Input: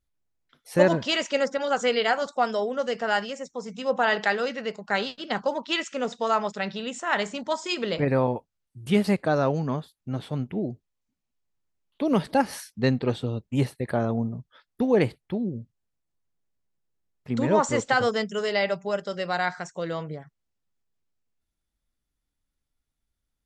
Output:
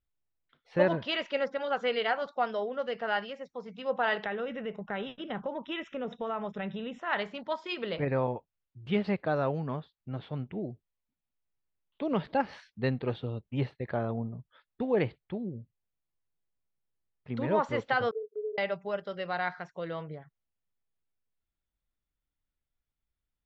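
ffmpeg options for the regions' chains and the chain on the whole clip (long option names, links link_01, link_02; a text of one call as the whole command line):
ffmpeg -i in.wav -filter_complex "[0:a]asettb=1/sr,asplit=3[link_01][link_02][link_03];[link_01]atrim=end=4.244[link_04];[link_02]atrim=start=4.24:end=7.02,asetpts=PTS-STARTPTS,afade=type=in:duration=0.004:curve=qsin,afade=type=out:start_time=2.776:duration=0.004:curve=qsin,lowshelf=frequency=420:gain=11.5,acompressor=threshold=-27dB:ratio=2.5:attack=3.2:release=140:knee=1:detection=peak,asuperstop=centerf=4500:order=12:qfactor=3.5[link_05];[link_03]atrim=start=7.016[link_06];[link_04][link_05]acrossfade=duration=0.004:curve1=hsin:curve2=qsin[link_07];[link_07][link_06]acrossfade=duration=0.004:curve1=qsin:curve2=hsin,asettb=1/sr,asplit=3[link_08][link_09][link_10];[link_08]atrim=end=18.114[link_11];[link_09]atrim=start=18.11:end=18.58,asetpts=PTS-STARTPTS,afade=type=in:duration=0.004:curve=qsin,afade=type=out:start_time=0.466:duration=0.004:curve=qsin,asuperpass=centerf=440:order=4:qfactor=7.1,agate=range=-11dB:threshold=-42dB:ratio=16:release=100:detection=peak[link_12];[link_10]atrim=start=18.576[link_13];[link_11][link_12]acrossfade=duration=0.004:curve1=hsin:curve2=qsin[link_14];[link_14][link_13]acrossfade=duration=0.004:curve1=qsin:curve2=hsin,lowpass=frequency=3700:width=0.5412,lowpass=frequency=3700:width=1.3066,equalizer=frequency=250:width=1.9:gain=-3.5,volume=-5.5dB" out.wav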